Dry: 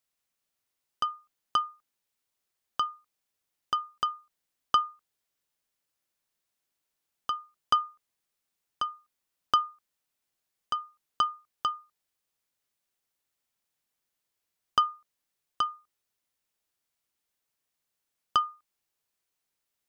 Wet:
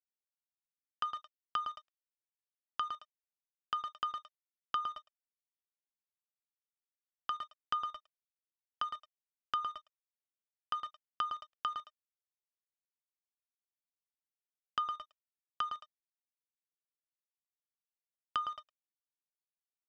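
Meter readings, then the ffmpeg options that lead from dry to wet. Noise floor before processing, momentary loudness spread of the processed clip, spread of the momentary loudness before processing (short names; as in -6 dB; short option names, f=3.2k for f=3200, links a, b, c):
-84 dBFS, 10 LU, 12 LU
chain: -filter_complex "[0:a]aecho=1:1:110|220|330:0.335|0.0971|0.0282,asplit=2[a][b];[b]acrusher=bits=5:mix=0:aa=0.000001,volume=-9dB[c];[a][c]amix=inputs=2:normalize=0,aeval=exprs='sgn(val(0))*max(abs(val(0))-0.00562,0)':c=same,tiltshelf=f=1.3k:g=-8.5,acrossover=split=860[d][e];[d]asoftclip=type=tanh:threshold=-37.5dB[f];[e]acompressor=threshold=-36dB:ratio=5[g];[f][g]amix=inputs=2:normalize=0,lowpass=2.1k,volume=1.5dB"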